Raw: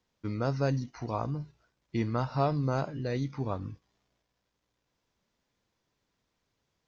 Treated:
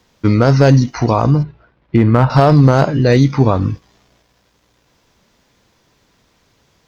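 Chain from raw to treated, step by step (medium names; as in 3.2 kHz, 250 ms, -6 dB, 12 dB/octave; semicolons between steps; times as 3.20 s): 1.43–2.30 s: distance through air 420 m; one-sided clip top -24 dBFS, bottom -18.5 dBFS; loudness maximiser +23 dB; trim -1 dB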